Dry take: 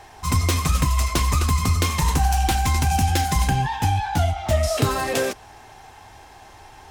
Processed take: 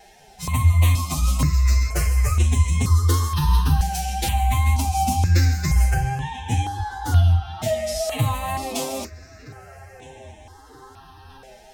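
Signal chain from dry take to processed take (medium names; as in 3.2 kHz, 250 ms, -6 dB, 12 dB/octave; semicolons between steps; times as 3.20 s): tape echo 748 ms, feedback 73%, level -19 dB, low-pass 4.5 kHz; time stretch by phase-locked vocoder 1.7×; wow and flutter 24 cents; on a send at -14.5 dB: tone controls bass +13 dB, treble +3 dB + reverberation, pre-delay 30 ms; on the sum: stepped phaser 2.1 Hz 300–4700 Hz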